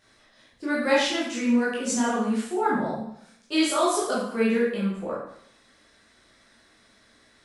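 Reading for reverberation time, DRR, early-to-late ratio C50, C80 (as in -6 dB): 0.70 s, -8.0 dB, 1.0 dB, 5.5 dB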